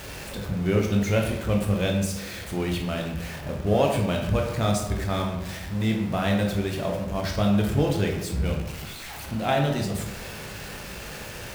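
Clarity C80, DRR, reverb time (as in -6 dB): 7.5 dB, 1.0 dB, 0.95 s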